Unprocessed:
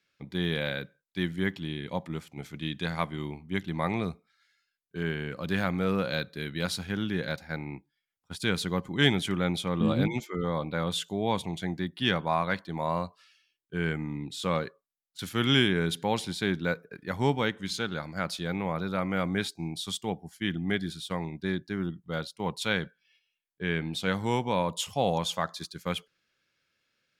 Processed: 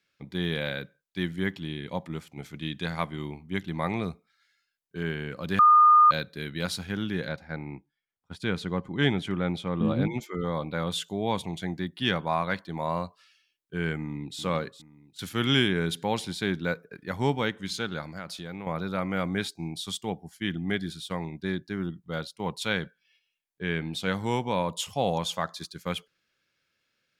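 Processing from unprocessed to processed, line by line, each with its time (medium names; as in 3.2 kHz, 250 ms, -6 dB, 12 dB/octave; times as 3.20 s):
5.59–6.11 s: bleep 1.22 kHz -13 dBFS
7.28–10.21 s: low-pass 2.1 kHz 6 dB/octave
13.97–14.40 s: echo throw 410 ms, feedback 45%, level -13 dB
18.07–18.67 s: compression 3:1, threshold -35 dBFS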